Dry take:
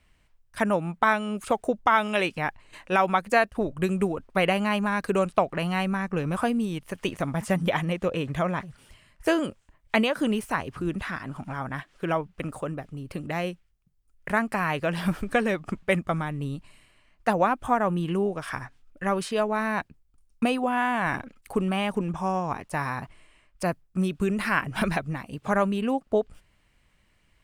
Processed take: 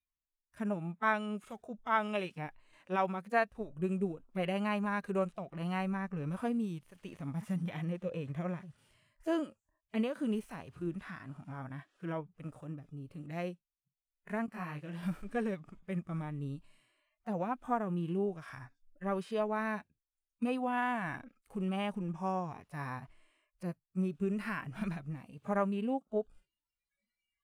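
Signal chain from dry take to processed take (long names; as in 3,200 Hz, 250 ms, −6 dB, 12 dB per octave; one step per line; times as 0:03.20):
noise reduction from a noise print of the clip's start 25 dB
harmonic and percussive parts rebalanced percussive −17 dB
0:14.46–0:15.03: micro pitch shift up and down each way 35 cents
level −7.5 dB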